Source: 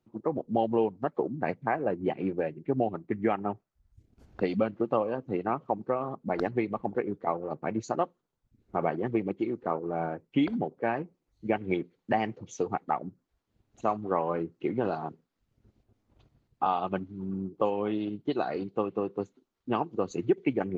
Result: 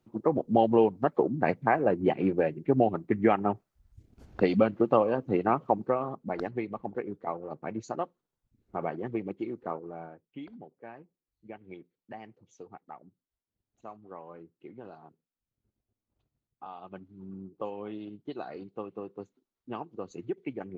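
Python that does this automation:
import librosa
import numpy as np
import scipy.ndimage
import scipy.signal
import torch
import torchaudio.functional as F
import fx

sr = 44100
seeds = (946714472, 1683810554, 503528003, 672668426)

y = fx.gain(x, sr, db=fx.line((5.73, 4.0), (6.43, -4.5), (9.7, -4.5), (10.27, -17.0), (16.69, -17.0), (17.22, -9.0)))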